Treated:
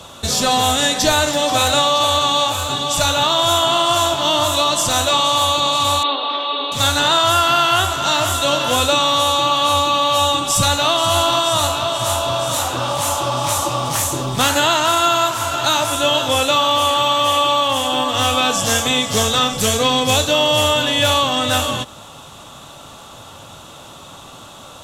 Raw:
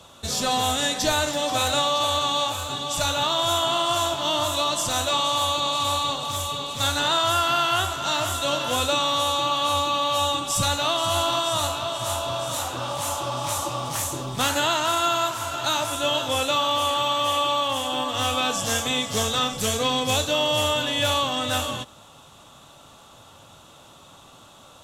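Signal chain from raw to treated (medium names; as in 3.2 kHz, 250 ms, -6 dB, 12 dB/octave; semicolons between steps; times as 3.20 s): 6.03–6.72 s: Chebyshev band-pass 270–4100 Hz, order 5; in parallel at -2 dB: compression, threshold -32 dBFS, peak gain reduction 13.5 dB; on the sum: trim +5.5 dB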